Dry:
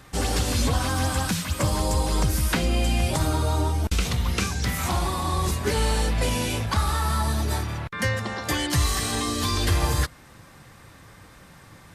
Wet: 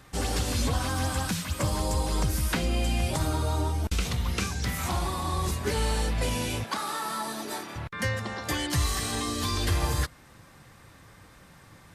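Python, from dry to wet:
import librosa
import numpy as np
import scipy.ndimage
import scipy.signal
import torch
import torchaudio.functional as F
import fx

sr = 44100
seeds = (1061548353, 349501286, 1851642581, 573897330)

y = fx.highpass(x, sr, hz=220.0, slope=24, at=(6.64, 7.76))
y = F.gain(torch.from_numpy(y), -4.0).numpy()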